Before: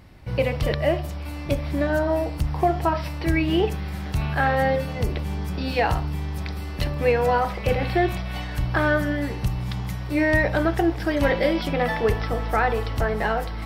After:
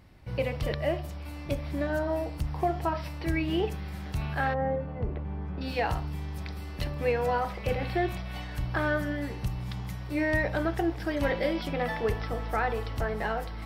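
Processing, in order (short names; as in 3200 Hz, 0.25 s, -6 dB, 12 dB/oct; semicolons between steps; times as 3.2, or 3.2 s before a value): 4.53–5.6 LPF 1000 Hz -> 1700 Hz 12 dB/oct; gain -7 dB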